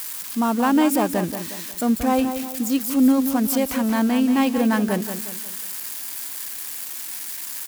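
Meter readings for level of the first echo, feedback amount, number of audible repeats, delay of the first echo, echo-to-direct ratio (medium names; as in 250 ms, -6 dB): -9.0 dB, 41%, 4, 180 ms, -8.0 dB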